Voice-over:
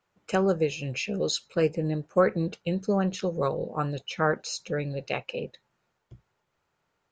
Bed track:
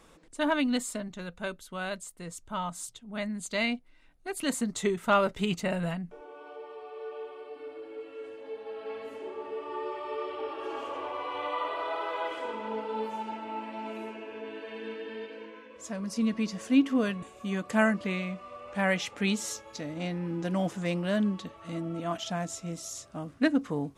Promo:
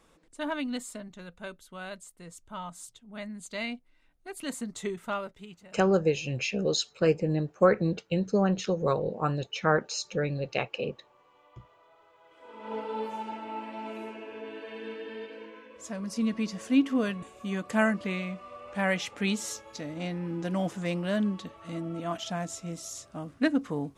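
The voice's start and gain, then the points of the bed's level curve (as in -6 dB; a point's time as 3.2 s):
5.45 s, +0.5 dB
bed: 5 s -5.5 dB
5.87 s -27.5 dB
12.23 s -27.5 dB
12.74 s -0.5 dB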